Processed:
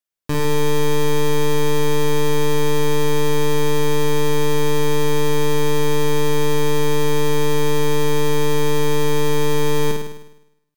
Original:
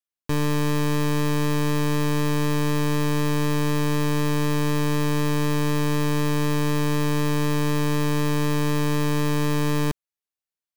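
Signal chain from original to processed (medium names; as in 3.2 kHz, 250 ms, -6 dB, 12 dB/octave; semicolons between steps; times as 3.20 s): flutter echo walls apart 8.9 m, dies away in 0.84 s; trim +2.5 dB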